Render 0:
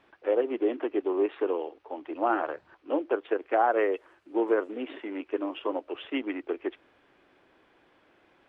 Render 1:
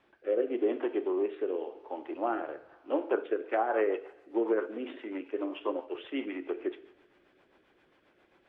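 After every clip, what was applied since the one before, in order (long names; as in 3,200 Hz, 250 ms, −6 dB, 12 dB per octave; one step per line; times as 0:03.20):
coupled-rooms reverb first 0.61 s, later 1.9 s, DRR 8 dB
rotating-speaker cabinet horn 0.9 Hz, later 7.5 Hz, at 0:03.12
treble cut that deepens with the level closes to 2,800 Hz, closed at −20.5 dBFS
level −1.5 dB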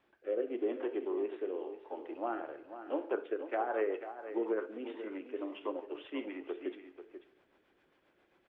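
single-tap delay 489 ms −11 dB
level −5.5 dB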